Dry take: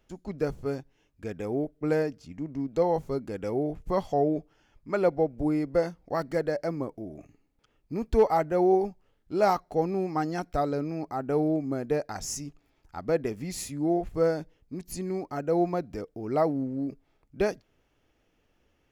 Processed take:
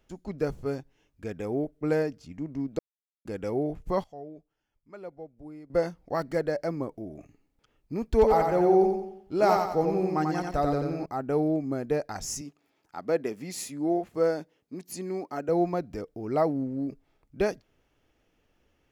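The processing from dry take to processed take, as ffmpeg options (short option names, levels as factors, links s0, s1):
-filter_complex "[0:a]asettb=1/sr,asplit=3[s0][s1][s2];[s0]atrim=end=8.124[s3];[s1]atrim=start=8.12:end=11.06,asetpts=PTS-STARTPTS,afade=t=in:d=0.004:c=qsin,afade=t=out:st=2.936:d=0.004:c=qsin,aecho=1:1:90|180|270|360|450:0.631|0.271|0.117|0.0502|0.0216,atrim=end_sample=129654[s4];[s2]atrim=start=11.056[s5];[s3][s4]acrossfade=d=0.004:c1=hsin:c2=qsin[s6];[s6][s5]acrossfade=d=0.004:c1=qsin:c2=hsin,asettb=1/sr,asplit=3[s7][s8][s9];[s7]atrim=end=12.414[s10];[s8]atrim=start=12.41:end=15.49,asetpts=PTS-STARTPTS,afade=t=in:d=0.004:c=qsin,afade=t=out:st=3.076:d=0.004:c=qsin,highpass=210[s11];[s9]atrim=start=15.486[s12];[s10][s11]acrossfade=d=0.004:c1=hsin:c2=qsin[s13];[s13][s12]acrossfade=d=0.004:c1=qsin:c2=hsin,asplit=5[s14][s15][s16][s17][s18];[s14]atrim=end=2.79,asetpts=PTS-STARTPTS,afade=t=out:st=2.786:d=0.004:c=hsin[s19];[s15]atrim=start=2.79:end=3.25,asetpts=PTS-STARTPTS,volume=0[s20];[s16]atrim=start=3.25:end=4.04,asetpts=PTS-STARTPTS,afade=t=in:d=0.004:c=hsin,afade=t=out:st=0.62:d=0.17:c=log:silence=0.133352[s21];[s17]atrim=start=4.04:end=5.7,asetpts=PTS-STARTPTS,volume=0.133[s22];[s18]atrim=start=5.7,asetpts=PTS-STARTPTS,afade=t=in:d=0.17:c=log:silence=0.133352[s23];[s19][s20][s21][s22][s23]concat=n=5:v=0:a=1"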